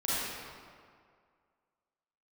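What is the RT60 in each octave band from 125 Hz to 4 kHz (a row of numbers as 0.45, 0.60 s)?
1.9, 1.9, 2.1, 2.1, 1.7, 1.3 s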